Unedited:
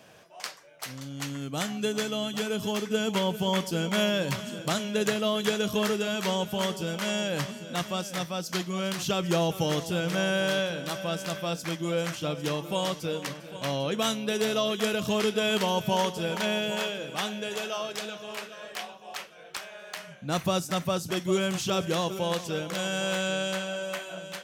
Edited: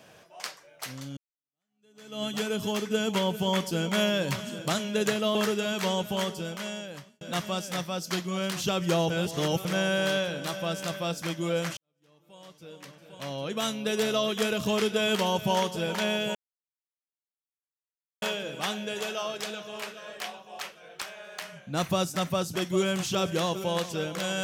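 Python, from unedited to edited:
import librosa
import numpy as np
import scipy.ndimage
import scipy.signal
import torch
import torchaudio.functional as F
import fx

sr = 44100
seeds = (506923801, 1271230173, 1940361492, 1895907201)

y = fx.edit(x, sr, fx.fade_in_span(start_s=1.17, length_s=1.06, curve='exp'),
    fx.cut(start_s=5.35, length_s=0.42),
    fx.fade_out_span(start_s=6.53, length_s=1.1),
    fx.reverse_span(start_s=9.52, length_s=0.55),
    fx.fade_in_span(start_s=12.19, length_s=2.16, curve='qua'),
    fx.insert_silence(at_s=16.77, length_s=1.87), tone=tone)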